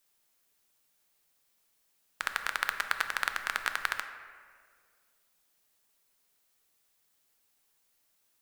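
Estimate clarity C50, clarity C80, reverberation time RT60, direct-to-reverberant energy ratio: 8.5 dB, 10.0 dB, 2.0 s, 7.0 dB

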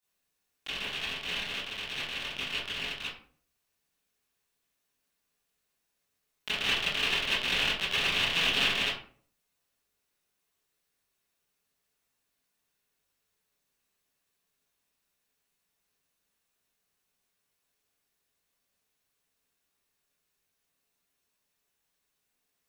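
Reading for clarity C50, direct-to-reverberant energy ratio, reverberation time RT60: 2.5 dB, -11.0 dB, 0.50 s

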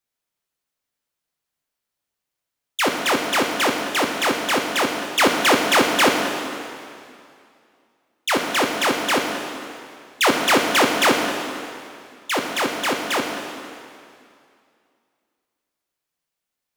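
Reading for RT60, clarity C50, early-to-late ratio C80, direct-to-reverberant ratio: 2.4 s, 3.5 dB, 4.5 dB, 2.0 dB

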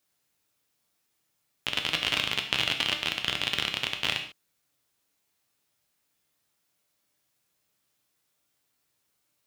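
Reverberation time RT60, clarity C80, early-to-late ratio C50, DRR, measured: not exponential, 11.5 dB, 8.5 dB, 4.0 dB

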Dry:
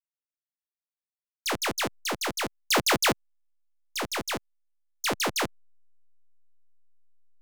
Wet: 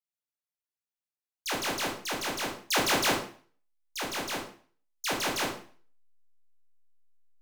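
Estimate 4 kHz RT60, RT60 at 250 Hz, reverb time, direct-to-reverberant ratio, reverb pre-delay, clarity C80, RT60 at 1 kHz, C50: 0.40 s, 0.45 s, 0.45 s, -2.0 dB, 7 ms, 11.0 dB, 0.45 s, 6.5 dB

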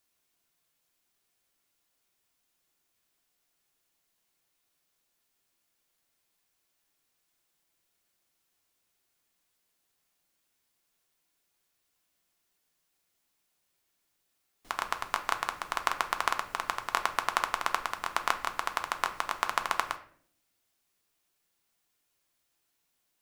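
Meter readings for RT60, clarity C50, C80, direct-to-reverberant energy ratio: 0.60 s, 13.0 dB, 16.5 dB, 6.0 dB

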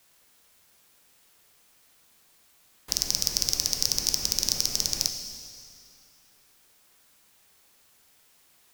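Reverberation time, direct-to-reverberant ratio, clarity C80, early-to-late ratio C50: 2.4 s, 6.0 dB, 8.0 dB, 7.0 dB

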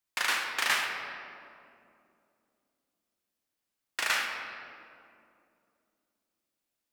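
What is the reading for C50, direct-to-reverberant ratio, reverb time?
3.0 dB, 1.5 dB, 2.6 s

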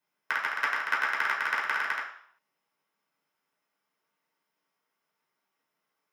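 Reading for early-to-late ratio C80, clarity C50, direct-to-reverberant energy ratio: 9.5 dB, 5.5 dB, -5.5 dB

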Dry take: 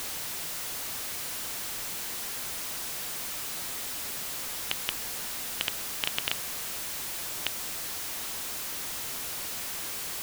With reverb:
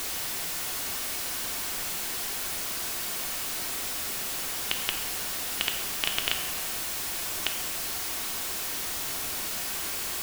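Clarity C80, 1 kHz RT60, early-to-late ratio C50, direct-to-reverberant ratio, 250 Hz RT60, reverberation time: 8.0 dB, 1.3 s, 6.5 dB, 3.0 dB, 1.5 s, 1.3 s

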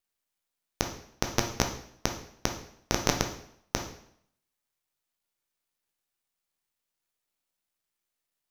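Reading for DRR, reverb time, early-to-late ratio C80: 3.5 dB, 0.65 s, 12.0 dB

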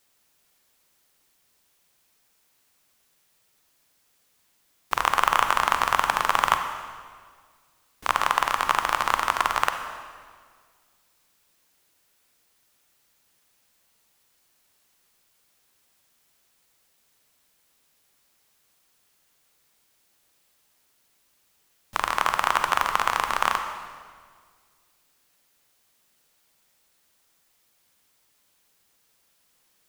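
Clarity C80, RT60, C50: 8.0 dB, 1.7 s, 7.0 dB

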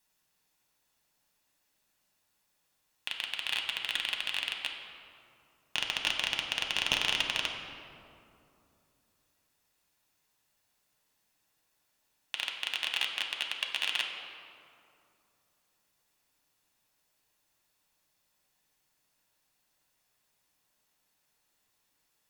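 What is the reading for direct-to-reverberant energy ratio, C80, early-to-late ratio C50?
1.0 dB, 5.5 dB, 4.0 dB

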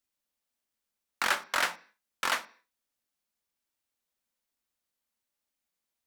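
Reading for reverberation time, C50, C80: 0.40 s, 19.0 dB, 23.5 dB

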